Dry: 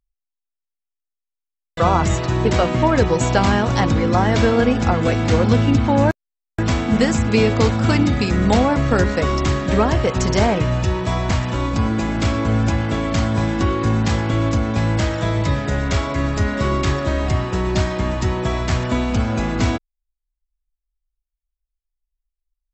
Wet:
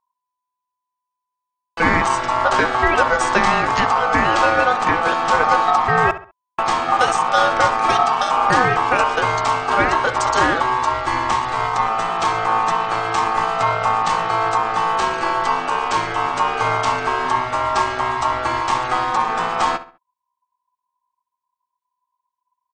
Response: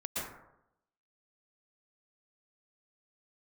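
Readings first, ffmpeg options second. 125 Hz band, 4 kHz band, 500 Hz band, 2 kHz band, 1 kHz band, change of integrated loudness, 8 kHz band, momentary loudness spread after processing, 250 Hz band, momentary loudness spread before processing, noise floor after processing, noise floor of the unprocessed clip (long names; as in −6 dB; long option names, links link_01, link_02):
−14.5 dB, +1.5 dB, −2.0 dB, +6.5 dB, +9.0 dB, +1.0 dB, 0.0 dB, 5 LU, −10.5 dB, 5 LU, −82 dBFS, −84 dBFS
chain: -filter_complex "[0:a]aeval=exprs='val(0)*sin(2*PI*1000*n/s)':channel_layout=same,asplit=2[link_01][link_02];[link_02]adelay=67,lowpass=frequency=3200:poles=1,volume=-13.5dB,asplit=2[link_03][link_04];[link_04]adelay=67,lowpass=frequency=3200:poles=1,volume=0.36,asplit=2[link_05][link_06];[link_06]adelay=67,lowpass=frequency=3200:poles=1,volume=0.36[link_07];[link_01][link_03][link_05][link_07]amix=inputs=4:normalize=0,volume=2.5dB"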